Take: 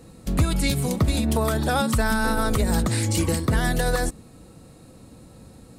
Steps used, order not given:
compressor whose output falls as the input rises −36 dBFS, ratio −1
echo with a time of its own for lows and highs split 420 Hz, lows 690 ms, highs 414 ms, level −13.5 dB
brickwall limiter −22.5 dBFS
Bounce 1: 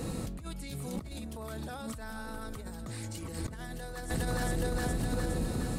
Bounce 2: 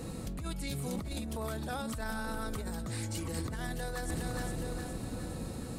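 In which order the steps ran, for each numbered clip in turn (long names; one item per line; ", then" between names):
echo with a time of its own for lows and highs, then compressor whose output falls as the input rises, then brickwall limiter
brickwall limiter, then echo with a time of its own for lows and highs, then compressor whose output falls as the input rises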